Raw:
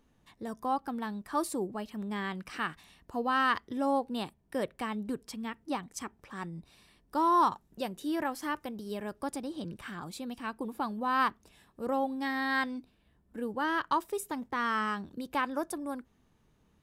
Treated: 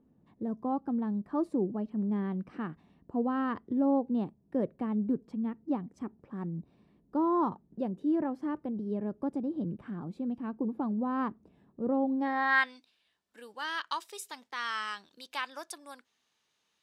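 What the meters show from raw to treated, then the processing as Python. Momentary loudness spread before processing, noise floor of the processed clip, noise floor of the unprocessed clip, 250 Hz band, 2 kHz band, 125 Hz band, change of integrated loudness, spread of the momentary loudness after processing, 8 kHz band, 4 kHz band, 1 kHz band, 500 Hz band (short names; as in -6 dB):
12 LU, -78 dBFS, -69 dBFS, +4.5 dB, -0.5 dB, +5.5 dB, +0.5 dB, 12 LU, n/a, -2.0 dB, -5.0 dB, 0.0 dB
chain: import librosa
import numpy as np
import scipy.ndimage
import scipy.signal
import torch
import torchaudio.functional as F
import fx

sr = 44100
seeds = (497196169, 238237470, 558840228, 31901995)

y = fx.peak_eq(x, sr, hz=580.0, db=2.5, octaves=1.7)
y = fx.filter_sweep_bandpass(y, sr, from_hz=210.0, to_hz=4400.0, start_s=12.06, end_s=12.79, q=1.1)
y = F.gain(torch.from_numpy(y), 6.0).numpy()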